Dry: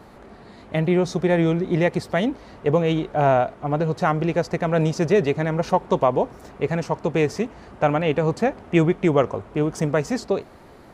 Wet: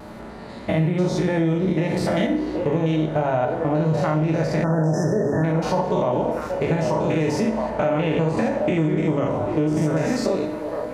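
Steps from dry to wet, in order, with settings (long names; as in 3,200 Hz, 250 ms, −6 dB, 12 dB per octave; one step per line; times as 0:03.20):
spectrum averaged block by block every 100 ms
pitch vibrato 0.62 Hz 17 cents
echo through a band-pass that steps 775 ms, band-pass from 490 Hz, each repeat 0.7 octaves, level −10 dB
brickwall limiter −18 dBFS, peak gain reduction 10 dB
on a send at −3 dB: convolution reverb RT60 0.60 s, pre-delay 3 ms
on the sum: time-frequency box erased 0:04.64–0:05.44, 1,900–5,000 Hz
downward compressor, threshold −24 dBFS, peak gain reduction 7 dB
level +7 dB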